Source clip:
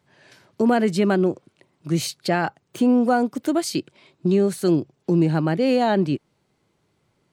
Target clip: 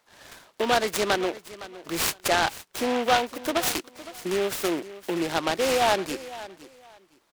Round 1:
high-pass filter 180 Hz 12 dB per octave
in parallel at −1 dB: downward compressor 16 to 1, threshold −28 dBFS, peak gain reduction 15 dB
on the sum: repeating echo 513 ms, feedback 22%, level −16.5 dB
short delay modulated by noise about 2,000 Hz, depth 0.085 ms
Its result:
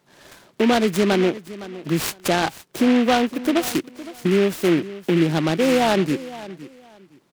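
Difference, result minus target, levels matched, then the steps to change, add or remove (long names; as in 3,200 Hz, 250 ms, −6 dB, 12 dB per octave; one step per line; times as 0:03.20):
250 Hz band +7.0 dB
change: high-pass filter 690 Hz 12 dB per octave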